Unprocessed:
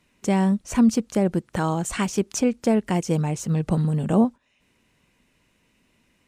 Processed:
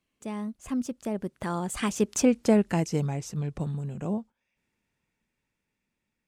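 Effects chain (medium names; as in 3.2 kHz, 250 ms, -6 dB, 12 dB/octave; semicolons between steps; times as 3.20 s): Doppler pass-by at 2.34 s, 30 m/s, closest 13 m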